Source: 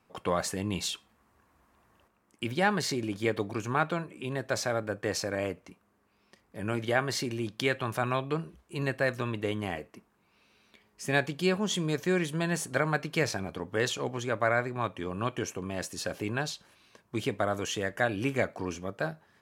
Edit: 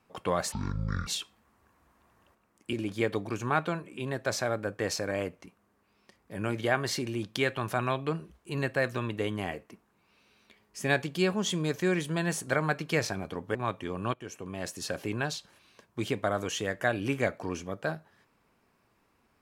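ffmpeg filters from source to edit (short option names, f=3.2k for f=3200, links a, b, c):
-filter_complex "[0:a]asplit=6[a][b][c][d][e][f];[a]atrim=end=0.524[g];[b]atrim=start=0.52:end=0.8,asetpts=PTS-STARTPTS,asetrate=22491,aresample=44100[h];[c]atrim=start=0.796:end=2.462[i];[d]atrim=start=2.968:end=13.792[j];[e]atrim=start=14.708:end=15.3,asetpts=PTS-STARTPTS,afade=t=out:st=0.588:d=0.004:c=hsin:silence=0.16788[k];[f]atrim=start=15.3,asetpts=PTS-STARTPTS,afade=t=in:d=0.81:c=qsin:silence=0.16788[l];[g][h]acrossfade=d=0.004:c1=hsin:c2=hsin[m];[m][i]acrossfade=d=0.004:c1=hsin:c2=hsin[n];[n][j]acrossfade=d=0.004:c1=hsin:c2=hsin[o];[k][l]concat=n=2:v=0:a=1[p];[o][p]acrossfade=d=0.004:c1=hsin:c2=hsin"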